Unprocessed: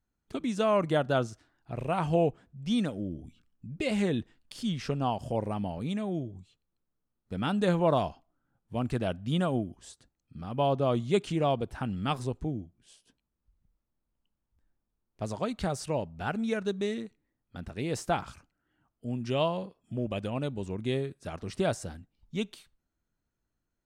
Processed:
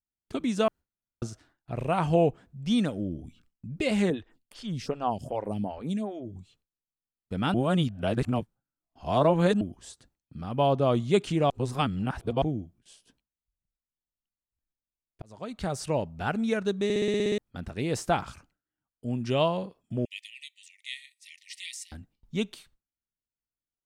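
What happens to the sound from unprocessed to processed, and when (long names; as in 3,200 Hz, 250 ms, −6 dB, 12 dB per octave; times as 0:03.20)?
0:00.68–0:01.22: fill with room tone
0:04.10–0:06.36: phaser with staggered stages 2.6 Hz
0:07.54–0:09.61: reverse
0:11.50–0:12.42: reverse
0:15.22–0:15.88: fade in linear
0:16.84: stutter in place 0.06 s, 9 plays
0:20.05–0:21.92: linear-phase brick-wall high-pass 1,800 Hz
whole clip: noise gate with hold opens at −56 dBFS; level +3 dB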